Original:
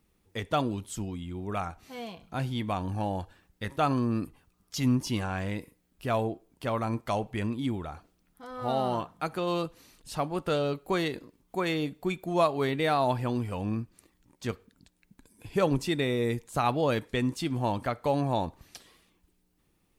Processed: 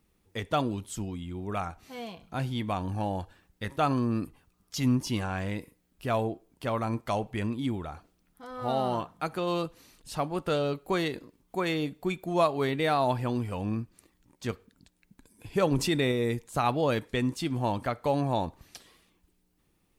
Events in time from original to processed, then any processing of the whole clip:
15.72–16.12 fast leveller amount 50%

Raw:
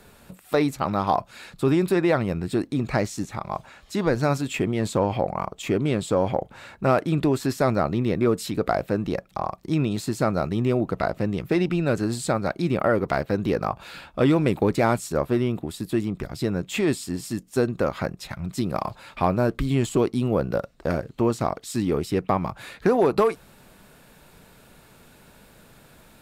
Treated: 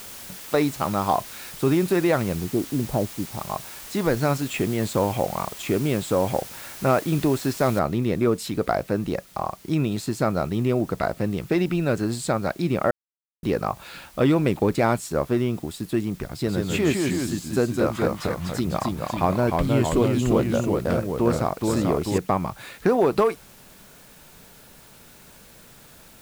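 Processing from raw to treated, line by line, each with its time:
2.35–3.41 inverse Chebyshev low-pass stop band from 4000 Hz, stop band 70 dB
7.79 noise floor step -40 dB -52 dB
12.91–13.43 mute
16.33–22.18 echoes that change speed 0.134 s, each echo -1 st, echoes 2

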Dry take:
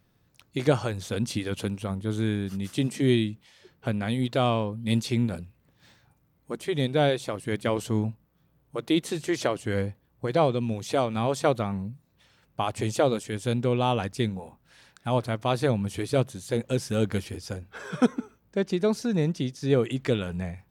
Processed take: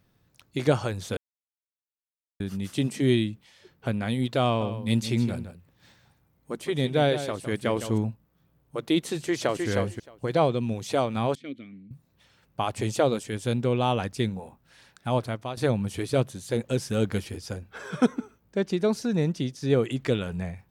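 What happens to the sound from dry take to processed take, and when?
1.17–2.4 mute
4.45–7.98 echo 0.159 s -11 dB
9.17–9.68 echo throw 0.31 s, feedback 10%, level -4 dB
11.35–11.91 vowel filter i
15.07–15.57 fade out equal-power, to -14.5 dB

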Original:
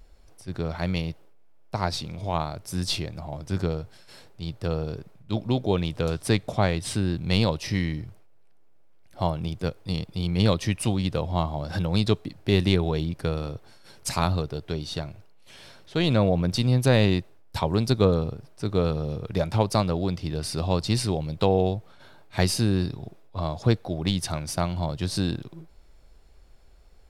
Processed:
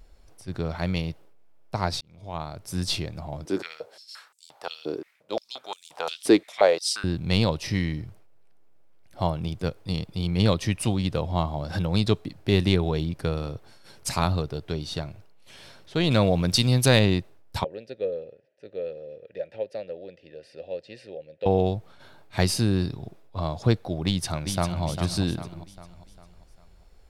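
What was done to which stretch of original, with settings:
2.01–2.78 fade in
3.45–7.04 stepped high-pass 5.7 Hz 330–7700 Hz
16.11–16.99 high shelf 2000 Hz +9.5 dB
17.64–21.46 vowel filter e
24.05–24.83 echo throw 0.4 s, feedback 45%, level -7.5 dB

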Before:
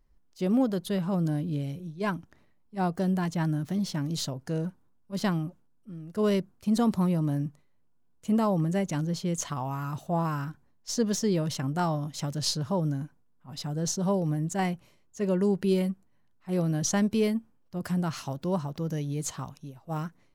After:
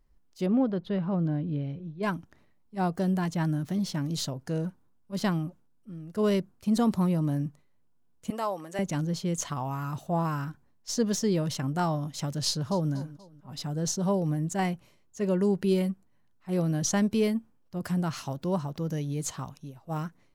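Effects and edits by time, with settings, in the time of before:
0.46–2.03 air absorption 310 m
8.3–8.79 HPF 590 Hz
12.47–12.92 echo throw 0.24 s, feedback 40%, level -17.5 dB

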